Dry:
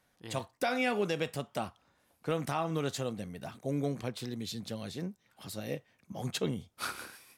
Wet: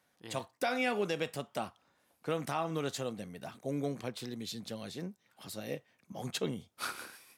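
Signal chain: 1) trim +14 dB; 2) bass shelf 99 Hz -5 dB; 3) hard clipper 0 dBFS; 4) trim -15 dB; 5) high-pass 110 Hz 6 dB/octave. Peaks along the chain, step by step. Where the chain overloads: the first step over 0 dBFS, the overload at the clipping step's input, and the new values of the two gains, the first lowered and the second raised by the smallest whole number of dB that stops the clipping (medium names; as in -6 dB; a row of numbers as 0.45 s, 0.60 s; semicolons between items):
-5.5 dBFS, -5.0 dBFS, -5.0 dBFS, -20.0 dBFS, -19.5 dBFS; nothing clips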